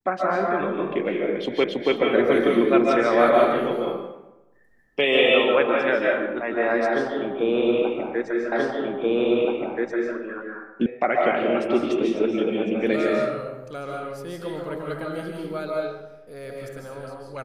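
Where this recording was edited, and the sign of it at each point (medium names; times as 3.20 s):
1.64 s: repeat of the last 0.28 s
8.52 s: repeat of the last 1.63 s
10.86 s: sound stops dead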